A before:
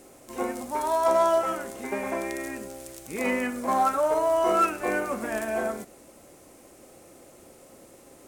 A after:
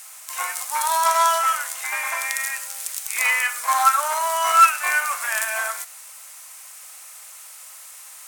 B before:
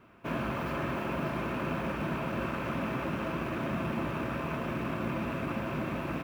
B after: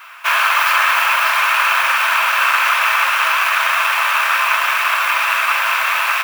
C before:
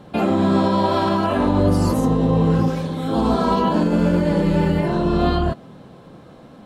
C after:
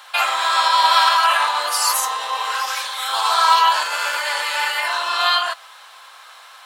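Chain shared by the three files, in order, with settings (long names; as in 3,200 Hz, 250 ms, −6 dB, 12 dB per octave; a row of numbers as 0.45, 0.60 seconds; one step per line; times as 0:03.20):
inverse Chebyshev high-pass filter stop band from 170 Hz, stop band 80 dB
spectral tilt +2 dB per octave
normalise the peak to −2 dBFS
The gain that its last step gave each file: +10.0, +24.0, +11.0 decibels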